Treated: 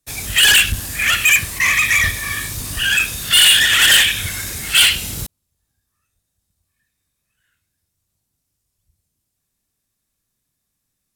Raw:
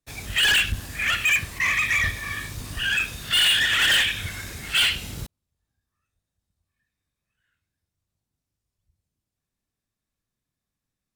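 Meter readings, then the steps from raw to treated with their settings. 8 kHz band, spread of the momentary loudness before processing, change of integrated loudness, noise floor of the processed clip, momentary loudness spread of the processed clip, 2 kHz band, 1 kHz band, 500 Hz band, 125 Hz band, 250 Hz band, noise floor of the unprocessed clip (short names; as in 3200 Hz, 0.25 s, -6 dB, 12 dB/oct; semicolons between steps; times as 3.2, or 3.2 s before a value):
+14.0 dB, 15 LU, +8.0 dB, -75 dBFS, 14 LU, +7.0 dB, +6.0 dB, +5.5 dB, +5.5 dB, +5.5 dB, under -85 dBFS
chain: bell 12000 Hz +11 dB 1.8 oct; gain +5.5 dB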